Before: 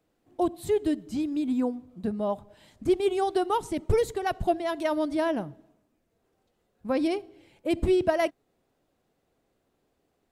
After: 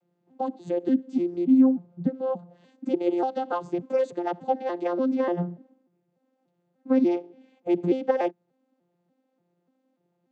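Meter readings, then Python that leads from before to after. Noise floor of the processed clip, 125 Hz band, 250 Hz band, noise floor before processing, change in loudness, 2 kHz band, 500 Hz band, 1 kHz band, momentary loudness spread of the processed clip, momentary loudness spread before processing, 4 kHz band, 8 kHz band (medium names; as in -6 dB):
-75 dBFS, -1.0 dB, +4.5 dB, -74 dBFS, +2.0 dB, -5.5 dB, 0.0 dB, -0.5 dB, 10 LU, 9 LU, no reading, under -10 dB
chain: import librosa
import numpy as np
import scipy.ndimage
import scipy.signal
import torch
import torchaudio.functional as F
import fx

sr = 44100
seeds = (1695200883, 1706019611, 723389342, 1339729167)

y = fx.vocoder_arp(x, sr, chord='bare fifth', root=53, every_ms=293)
y = F.gain(torch.from_numpy(y), 3.0).numpy()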